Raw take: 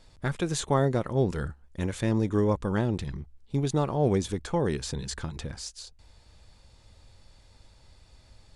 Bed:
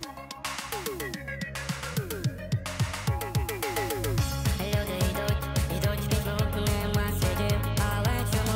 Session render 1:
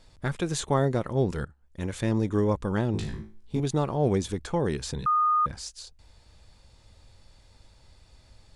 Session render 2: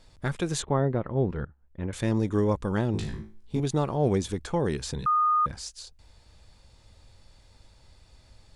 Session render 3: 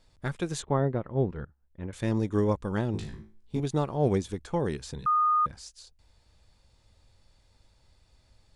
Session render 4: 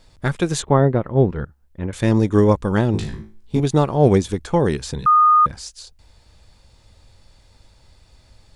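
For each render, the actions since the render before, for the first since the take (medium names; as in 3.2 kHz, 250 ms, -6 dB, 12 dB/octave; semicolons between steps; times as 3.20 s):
1.45–1.97 s: fade in, from -18 dB; 2.92–3.60 s: flutter echo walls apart 3.2 m, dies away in 0.36 s; 5.06–5.46 s: bleep 1.23 kHz -19.5 dBFS
0.62–1.93 s: distance through air 490 m
upward expansion 1.5:1, over -35 dBFS
trim +11 dB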